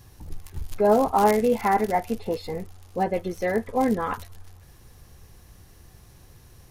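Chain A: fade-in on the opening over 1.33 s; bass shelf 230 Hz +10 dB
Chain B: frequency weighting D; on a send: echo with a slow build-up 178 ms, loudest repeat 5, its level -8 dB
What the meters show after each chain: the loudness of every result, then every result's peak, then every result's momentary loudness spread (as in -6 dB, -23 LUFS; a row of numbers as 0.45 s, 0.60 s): -22.5 LUFS, -22.0 LUFS; -7.0 dBFS, -4.0 dBFS; 19 LU, 12 LU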